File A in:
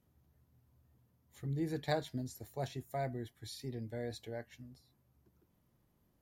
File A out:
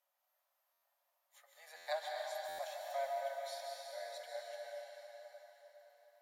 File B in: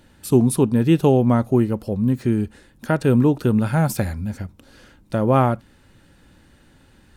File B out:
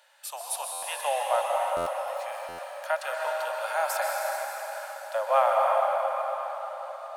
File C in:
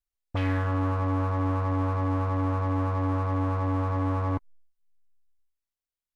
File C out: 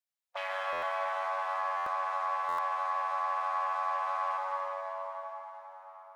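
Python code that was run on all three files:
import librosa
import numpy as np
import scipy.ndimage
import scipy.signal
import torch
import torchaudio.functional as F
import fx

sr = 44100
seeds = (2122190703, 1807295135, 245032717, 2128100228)

y = fx.hpss(x, sr, part='percussive', gain_db=-4)
y = scipy.signal.sosfilt(scipy.signal.cheby1(8, 1.0, 550.0, 'highpass', fs=sr, output='sos'), y)
y = fx.rev_plate(y, sr, seeds[0], rt60_s=5.0, hf_ratio=0.75, predelay_ms=115, drr_db=-2.0)
y = fx.buffer_glitch(y, sr, at_s=(0.72, 1.76, 2.48), block=512, repeats=8)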